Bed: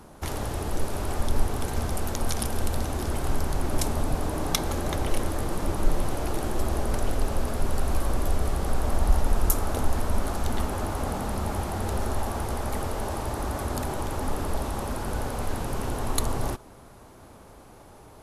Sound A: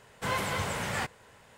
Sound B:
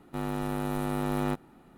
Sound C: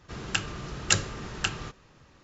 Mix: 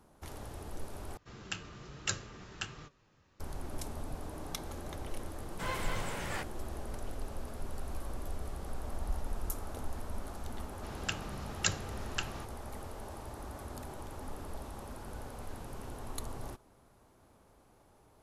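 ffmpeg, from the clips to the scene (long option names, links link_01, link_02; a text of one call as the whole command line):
ffmpeg -i bed.wav -i cue0.wav -i cue1.wav -i cue2.wav -filter_complex "[3:a]asplit=2[link_01][link_02];[0:a]volume=-14.5dB[link_03];[link_01]flanger=delay=6.2:depth=5.3:regen=67:speed=1.2:shape=triangular[link_04];[link_03]asplit=2[link_05][link_06];[link_05]atrim=end=1.174[link_07];[link_04]atrim=end=2.23,asetpts=PTS-STARTPTS,volume=-7dB[link_08];[link_06]atrim=start=3.396[link_09];[1:a]atrim=end=1.57,asetpts=PTS-STARTPTS,volume=-7dB,afade=type=in:duration=0.004:curve=hsin,afade=type=out:start_time=1.566:duration=0.004:curve=hsin,adelay=236817S[link_10];[link_02]atrim=end=2.23,asetpts=PTS-STARTPTS,volume=-8dB,afade=type=in:duration=0.004:curve=hsin,afade=type=out:start_time=2.226:duration=0.004:curve=hsin,adelay=473634S[link_11];[link_07][link_08]acrossfade=duration=0.004:curve1=hsin:curve2=hsin[link_12];[link_12][link_09]acrossfade=duration=0.004:curve1=hsin:curve2=hsin[link_13];[link_13][link_10][link_11]amix=inputs=3:normalize=0" out.wav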